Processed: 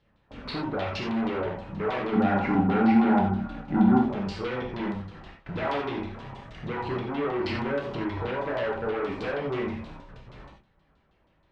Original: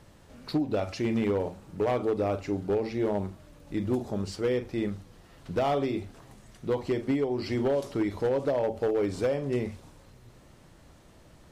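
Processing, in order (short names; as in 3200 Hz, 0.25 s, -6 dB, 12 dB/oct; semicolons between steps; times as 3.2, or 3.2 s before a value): gate with hold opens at -42 dBFS; in parallel at +2.5 dB: compressor, threshold -35 dBFS, peak gain reduction 11.5 dB; on the sum: chorus voices 4, 1.5 Hz, delay 28 ms, depth 3 ms; tube stage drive 34 dB, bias 0.4; LFO low-pass saw down 6.3 Hz 950–3900 Hz; 2.13–4.01 small resonant body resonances 230/770/1400 Hz, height 17 dB, ringing for 50 ms; non-linear reverb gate 0.11 s flat, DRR 1 dB; gain +3 dB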